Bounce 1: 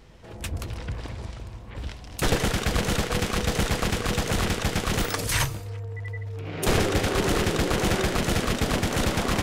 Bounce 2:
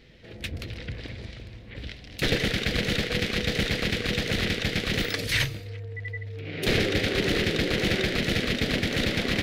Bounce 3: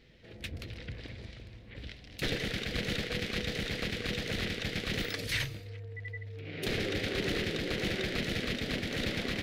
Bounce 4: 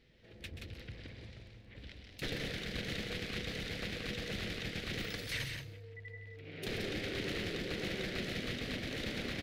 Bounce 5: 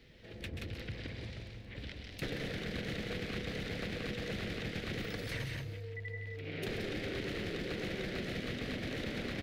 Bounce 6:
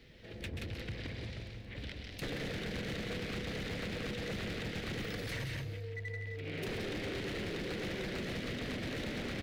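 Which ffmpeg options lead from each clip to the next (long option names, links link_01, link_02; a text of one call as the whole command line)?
ffmpeg -i in.wav -af "equalizer=frequency=125:width_type=o:width=1:gain=4,equalizer=frequency=250:width_type=o:width=1:gain=5,equalizer=frequency=500:width_type=o:width=1:gain=6,equalizer=frequency=1000:width_type=o:width=1:gain=-11,equalizer=frequency=2000:width_type=o:width=1:gain=11,equalizer=frequency=4000:width_type=o:width=1:gain=10,equalizer=frequency=8000:width_type=o:width=1:gain=-6,volume=-6.5dB" out.wav
ffmpeg -i in.wav -af "alimiter=limit=-14.5dB:level=0:latency=1:release=107,volume=-6.5dB" out.wav
ffmpeg -i in.wav -af "aecho=1:1:131.2|174.9:0.355|0.447,volume=-6.5dB" out.wav
ffmpeg -i in.wav -filter_complex "[0:a]acrossover=split=86|1100|2300[link_01][link_02][link_03][link_04];[link_01]acompressor=threshold=-55dB:ratio=4[link_05];[link_02]acompressor=threshold=-45dB:ratio=4[link_06];[link_03]acompressor=threshold=-55dB:ratio=4[link_07];[link_04]acompressor=threshold=-57dB:ratio=4[link_08];[link_05][link_06][link_07][link_08]amix=inputs=4:normalize=0,volume=7dB" out.wav
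ffmpeg -i in.wav -af "volume=36dB,asoftclip=hard,volume=-36dB,volume=1.5dB" out.wav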